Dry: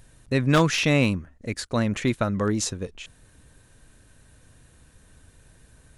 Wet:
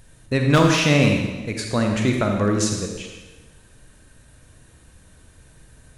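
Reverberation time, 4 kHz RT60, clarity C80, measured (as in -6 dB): 1.2 s, 1.1 s, 4.5 dB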